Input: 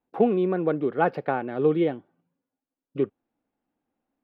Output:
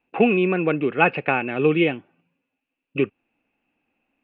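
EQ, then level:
dynamic equaliser 580 Hz, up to −4 dB, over −33 dBFS, Q 0.96
low-pass with resonance 2,600 Hz, resonance Q 14
+5.0 dB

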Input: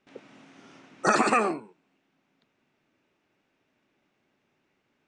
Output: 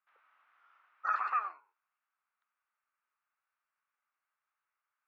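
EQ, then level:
four-pole ladder high-pass 1,100 Hz, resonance 60%
high-frequency loss of the air 73 metres
head-to-tape spacing loss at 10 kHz 36 dB
0.0 dB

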